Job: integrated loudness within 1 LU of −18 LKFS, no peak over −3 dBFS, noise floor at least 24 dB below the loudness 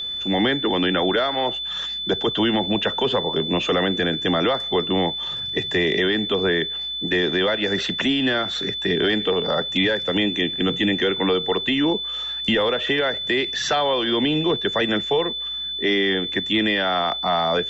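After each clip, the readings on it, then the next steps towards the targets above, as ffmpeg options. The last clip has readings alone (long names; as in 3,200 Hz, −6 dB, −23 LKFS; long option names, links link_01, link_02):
interfering tone 3,500 Hz; level of the tone −26 dBFS; integrated loudness −21.0 LKFS; sample peak −10.5 dBFS; target loudness −18.0 LKFS
→ -af "bandreject=frequency=3500:width=30"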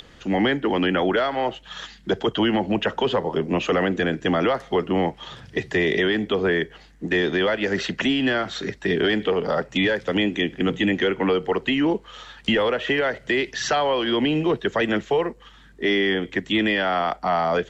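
interfering tone none found; integrated loudness −22.5 LKFS; sample peak −11.0 dBFS; target loudness −18.0 LKFS
→ -af "volume=4.5dB"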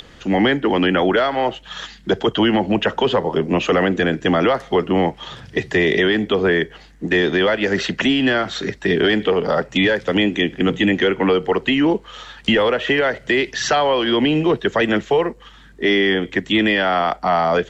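integrated loudness −18.0 LKFS; sample peak −6.5 dBFS; background noise floor −45 dBFS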